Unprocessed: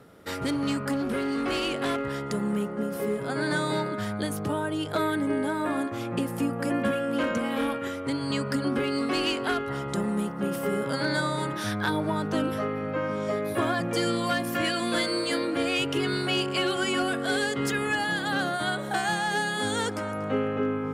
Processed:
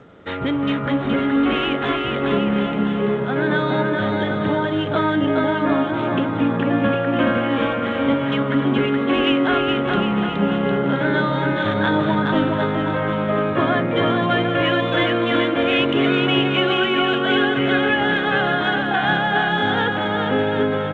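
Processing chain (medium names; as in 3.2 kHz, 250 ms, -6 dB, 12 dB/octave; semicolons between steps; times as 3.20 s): resampled via 8 kHz; bouncing-ball echo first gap 420 ms, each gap 0.8×, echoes 5; trim +6.5 dB; G.722 64 kbps 16 kHz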